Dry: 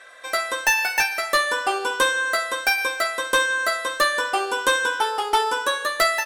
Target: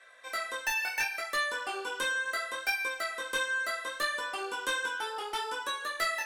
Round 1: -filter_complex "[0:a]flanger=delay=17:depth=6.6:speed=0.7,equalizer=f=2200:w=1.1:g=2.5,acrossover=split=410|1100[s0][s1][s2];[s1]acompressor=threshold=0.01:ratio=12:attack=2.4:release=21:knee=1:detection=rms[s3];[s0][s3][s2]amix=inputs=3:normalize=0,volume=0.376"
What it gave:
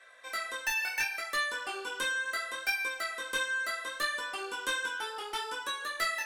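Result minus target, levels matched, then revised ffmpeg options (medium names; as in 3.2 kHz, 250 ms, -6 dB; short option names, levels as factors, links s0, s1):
compression: peak gain reduction +8 dB
-filter_complex "[0:a]flanger=delay=17:depth=6.6:speed=0.7,equalizer=f=2200:w=1.1:g=2.5,acrossover=split=410|1100[s0][s1][s2];[s1]acompressor=threshold=0.0266:ratio=12:attack=2.4:release=21:knee=1:detection=rms[s3];[s0][s3][s2]amix=inputs=3:normalize=0,volume=0.376"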